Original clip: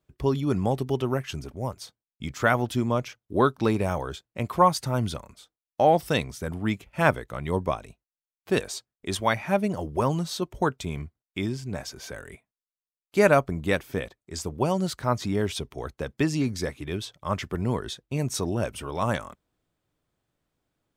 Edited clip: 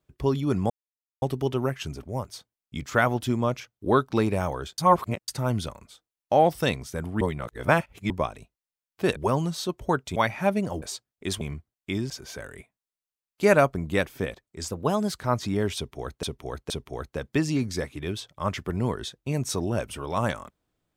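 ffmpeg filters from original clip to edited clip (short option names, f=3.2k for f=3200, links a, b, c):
-filter_complex "[0:a]asplit=15[a][b][c][d][e][f][g][h][i][j][k][l][m][n][o];[a]atrim=end=0.7,asetpts=PTS-STARTPTS,afade=t=out:st=0.696:d=0.004:c=hsin,apad=pad_dur=0.52[p];[b]atrim=start=0.7:end=4.262,asetpts=PTS-STARTPTS,afade=t=in:d=0.004:c=hsin[q];[c]atrim=start=4.258:end=4.762,asetpts=PTS-STARTPTS,areverse[r];[d]atrim=start=4.758:end=6.692[s];[e]atrim=start=6.688:end=7.582,asetpts=PTS-STARTPTS,areverse[t];[f]atrim=start=7.578:end=8.642[u];[g]atrim=start=9.888:end=10.892[v];[h]atrim=start=9.228:end=9.892[w];[i]atrim=start=8.638:end=9.232[x];[j]atrim=start=10.888:end=11.582[y];[k]atrim=start=11.838:end=14.454[z];[l]atrim=start=14.45:end=14.91,asetpts=PTS-STARTPTS,asetrate=49392,aresample=44100,atrim=end_sample=18112,asetpts=PTS-STARTPTS[aa];[m]atrim=start=14.906:end=16.022[ab];[n]atrim=start=15.548:end=16.022[ac];[o]atrim=start=15.548[ad];[p][q]concat=n=2:v=0:a=1[ae];[ae][r]acrossfade=d=0.004:c1=hsin:c2=hsin[af];[af][s]acrossfade=d=0.004:c1=hsin:c2=hsin[ag];[ag][t]acrossfade=d=0.004:c1=hsin:c2=hsin[ah];[ah][u]acrossfade=d=0.004:c1=hsin:c2=hsin[ai];[ai][v]acrossfade=d=0.004:c1=hsin:c2=hsin[aj];[aj][w]acrossfade=d=0.004:c1=hsin:c2=hsin[ak];[ak][x]acrossfade=d=0.004:c1=hsin:c2=hsin[al];[al][y]acrossfade=d=0.004:c1=hsin:c2=hsin[am];[am][z]acrossfade=d=0.004:c1=hsin:c2=hsin[an];[an][aa]acrossfade=d=0.004:c1=hsin:c2=hsin[ao];[ao][ab]acrossfade=d=0.004:c1=hsin:c2=hsin[ap];[ap][ac]acrossfade=d=0.004:c1=hsin:c2=hsin[aq];[aq][ad]acrossfade=d=0.004:c1=hsin:c2=hsin"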